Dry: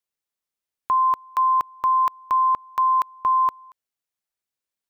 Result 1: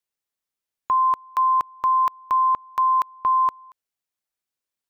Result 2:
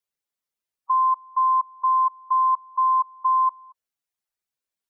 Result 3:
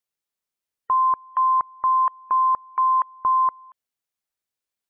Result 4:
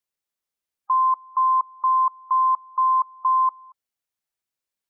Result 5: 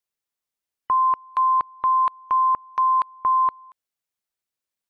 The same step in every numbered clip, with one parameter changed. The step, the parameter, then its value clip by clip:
spectral gate, under each frame's peak: -60, -10, -35, -20, -45 dB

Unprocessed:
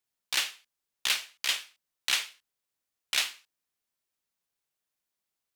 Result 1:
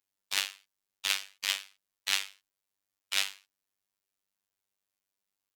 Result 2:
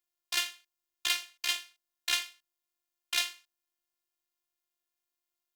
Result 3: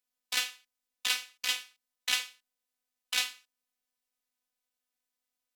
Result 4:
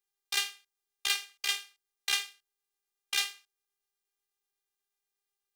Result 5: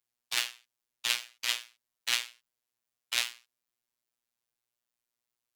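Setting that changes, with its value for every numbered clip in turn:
robotiser, frequency: 98, 350, 250, 400, 120 Hz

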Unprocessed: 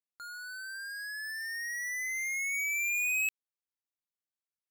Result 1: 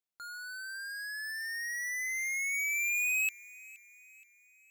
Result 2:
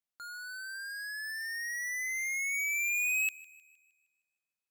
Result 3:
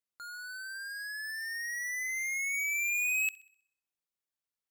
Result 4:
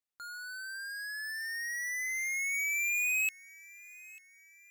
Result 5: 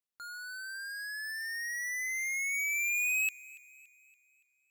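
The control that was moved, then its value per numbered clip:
thin delay, time: 472, 155, 64, 893, 284 ms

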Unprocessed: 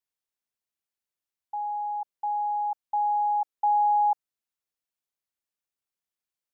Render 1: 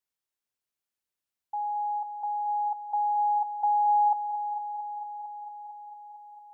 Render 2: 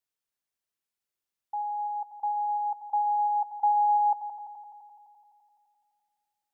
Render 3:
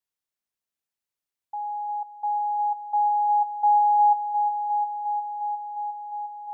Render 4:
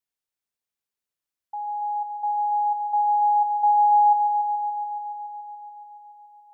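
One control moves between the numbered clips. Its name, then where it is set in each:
multi-head echo, time: 226, 85, 355, 142 ms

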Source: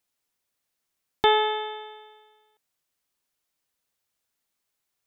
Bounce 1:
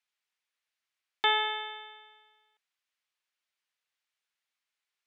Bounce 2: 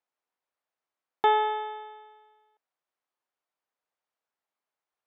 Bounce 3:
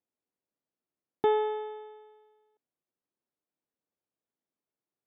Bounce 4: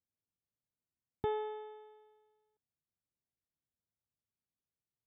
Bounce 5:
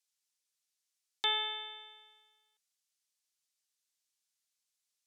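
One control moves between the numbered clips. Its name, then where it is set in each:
band-pass, frequency: 2300, 840, 300, 100, 6200 Hz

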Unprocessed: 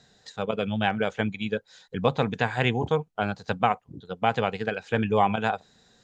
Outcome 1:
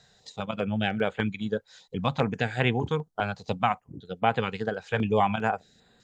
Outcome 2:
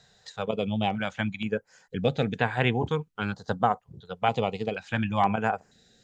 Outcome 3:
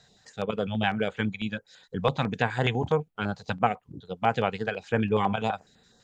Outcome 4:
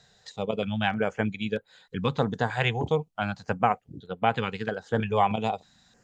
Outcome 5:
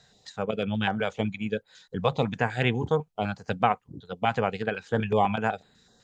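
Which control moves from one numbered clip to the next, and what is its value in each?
stepped notch, rate: 5, 2.1, 12, 3.2, 8 Hz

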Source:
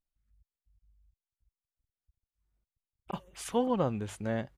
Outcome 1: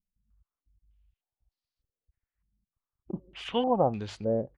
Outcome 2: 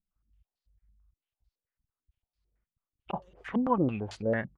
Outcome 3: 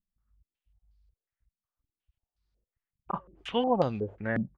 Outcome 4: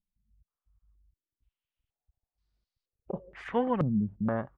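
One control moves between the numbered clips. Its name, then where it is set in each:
stepped low-pass, rate: 3.3, 9, 5.5, 2.1 Hz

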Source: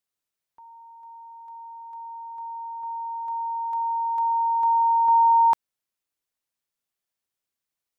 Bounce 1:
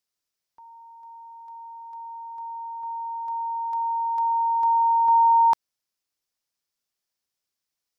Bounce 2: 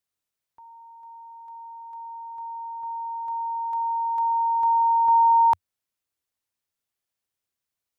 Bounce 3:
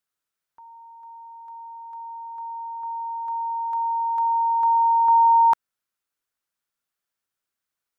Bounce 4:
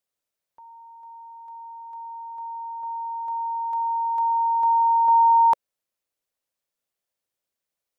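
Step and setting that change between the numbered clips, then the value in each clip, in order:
bell, frequency: 5200, 90, 1400, 550 Hz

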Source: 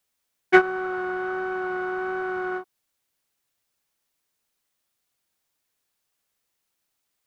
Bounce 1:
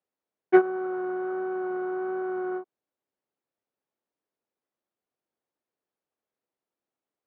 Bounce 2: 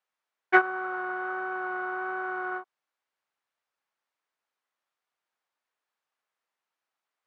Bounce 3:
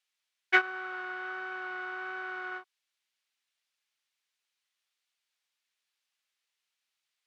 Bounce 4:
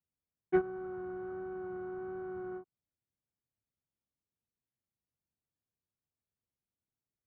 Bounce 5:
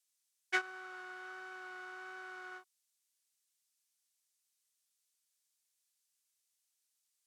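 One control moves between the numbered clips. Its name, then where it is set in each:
band-pass, frequency: 400, 1100, 2900, 100, 7800 Hz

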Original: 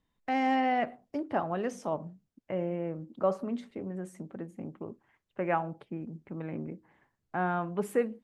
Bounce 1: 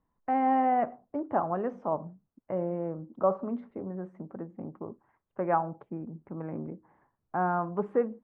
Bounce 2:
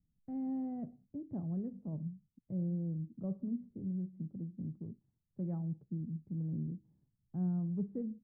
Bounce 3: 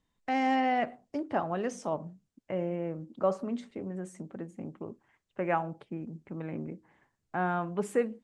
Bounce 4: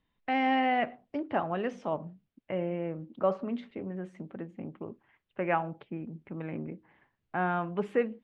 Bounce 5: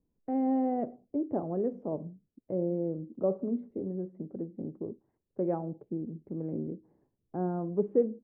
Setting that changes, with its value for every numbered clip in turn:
synth low-pass, frequency: 1100, 160, 8000, 3000, 420 Hz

